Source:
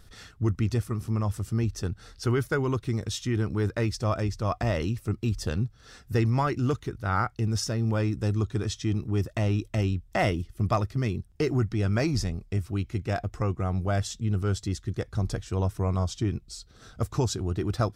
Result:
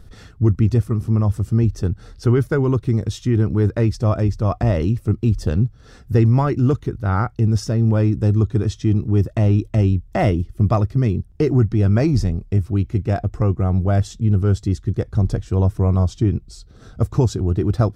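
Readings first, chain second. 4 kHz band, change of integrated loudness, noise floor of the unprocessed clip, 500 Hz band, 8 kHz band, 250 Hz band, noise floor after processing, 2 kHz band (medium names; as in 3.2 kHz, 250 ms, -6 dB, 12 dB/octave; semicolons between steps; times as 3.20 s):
-1.0 dB, +9.5 dB, -55 dBFS, +7.5 dB, no reading, +9.5 dB, -46 dBFS, +1.0 dB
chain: tilt shelf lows +6 dB, about 850 Hz; trim +4.5 dB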